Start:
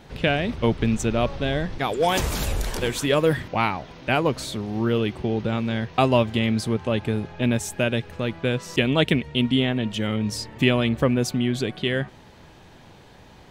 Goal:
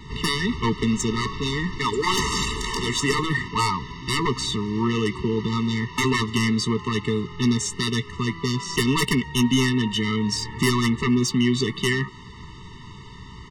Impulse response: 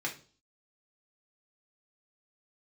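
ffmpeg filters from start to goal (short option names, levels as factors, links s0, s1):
-filter_complex "[0:a]lowpass=f=7500:w=0.5412,lowpass=f=7500:w=1.3066,equalizer=f=320:w=1.4:g=-8.5,acrossover=split=190|2300[s0][s1][s2];[s0]acompressor=threshold=0.00794:ratio=6[s3];[s3][s1][s2]amix=inputs=3:normalize=0,aeval=exprs='0.596*sin(PI/2*5.62*val(0)/0.596)':c=same,asplit=2[s4][s5];[s5]adelay=16,volume=0.2[s6];[s4][s6]amix=inputs=2:normalize=0,afftfilt=real='re*eq(mod(floor(b*sr/1024/440),2),0)':imag='im*eq(mod(floor(b*sr/1024/440),2),0)':win_size=1024:overlap=0.75,volume=0.376"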